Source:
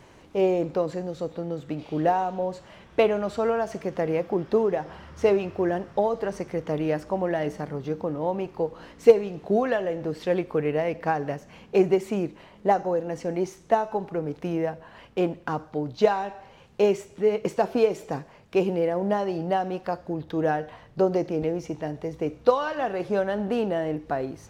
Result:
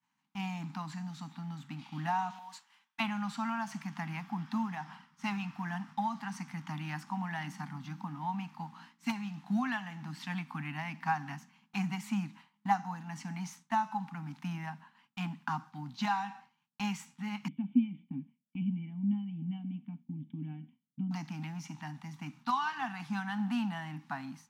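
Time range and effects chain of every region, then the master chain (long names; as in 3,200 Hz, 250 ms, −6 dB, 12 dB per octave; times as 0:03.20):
0:02.30–0:03.00: high-pass filter 410 Hz + spectral tilt +2 dB per octave + downward compressor 2 to 1, threshold −34 dBFS
0:17.48–0:21.11: formant resonators in series i + low-shelf EQ 400 Hz +11.5 dB
whole clip: Butterworth high-pass 150 Hz; downward expander −38 dBFS; elliptic band-stop filter 250–840 Hz, stop band 40 dB; level −2.5 dB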